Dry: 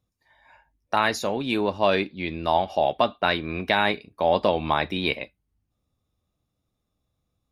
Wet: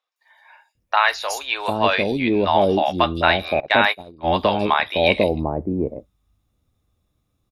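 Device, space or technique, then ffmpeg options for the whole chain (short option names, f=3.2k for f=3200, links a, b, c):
low shelf boost with a cut just above: -filter_complex "[0:a]lowshelf=f=90:g=3.5,equalizer=f=160:t=o:w=1:g=-2.5,acrossover=split=660|4900[a][b][c];[c]adelay=160[d];[a]adelay=750[e];[e][b][d]amix=inputs=3:normalize=0,asettb=1/sr,asplit=3[f][g][h];[f]atrim=end=3.604[i];[g]atrim=start=3.6:end=4.38,asetpts=PTS-STARTPTS,afade=t=in:d=0.004:c=qsin,afade=t=out:st=0.776:d=0.004:c=qsin,agate=range=-21dB:threshold=-25dB:ratio=16:detection=peak[j];[h]atrim=start=4.376[k];[i][j]acrossfade=d=0.004:c1=hsin:c2=qsin[l];[l][k]acrossfade=d=0.004:c1=qsin:c2=hsin,volume=7dB"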